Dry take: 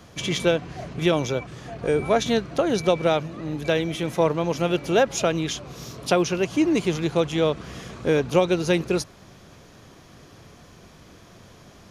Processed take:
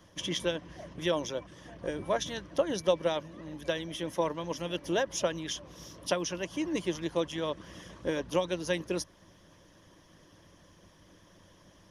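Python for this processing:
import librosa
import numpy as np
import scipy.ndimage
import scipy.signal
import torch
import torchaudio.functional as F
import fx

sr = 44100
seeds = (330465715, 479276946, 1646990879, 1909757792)

y = fx.hpss(x, sr, part='harmonic', gain_db=-10)
y = fx.ripple_eq(y, sr, per_octave=1.2, db=8)
y = F.gain(torch.from_numpy(y), -7.0).numpy()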